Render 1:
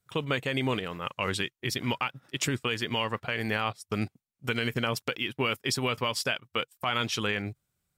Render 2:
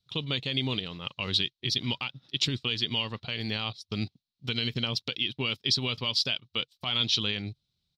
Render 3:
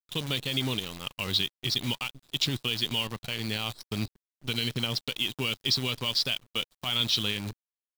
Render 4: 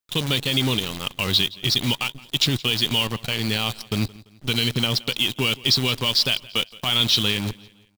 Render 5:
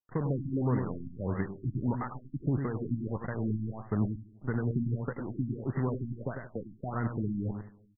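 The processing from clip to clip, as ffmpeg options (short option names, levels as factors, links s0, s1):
-af "firequalizer=gain_entry='entry(160,0);entry(500,-8);entry(950,-8);entry(1600,-12);entry(3900,14);entry(7700,-14);entry(14000,-18)':delay=0.05:min_phase=1"
-af "acrusher=bits=7:dc=4:mix=0:aa=0.000001"
-filter_complex "[0:a]aecho=1:1:170|340|510:0.075|0.0307|0.0126,asplit=2[s0][s1];[s1]asoftclip=type=hard:threshold=0.0376,volume=0.473[s2];[s0][s2]amix=inputs=2:normalize=0,volume=1.88"
-af "aecho=1:1:86|101|178:0.141|0.422|0.106,afftfilt=real='re*lt(b*sr/1024,320*pow(2100/320,0.5+0.5*sin(2*PI*1.6*pts/sr)))':imag='im*lt(b*sr/1024,320*pow(2100/320,0.5+0.5*sin(2*PI*1.6*pts/sr)))':win_size=1024:overlap=0.75,volume=0.562"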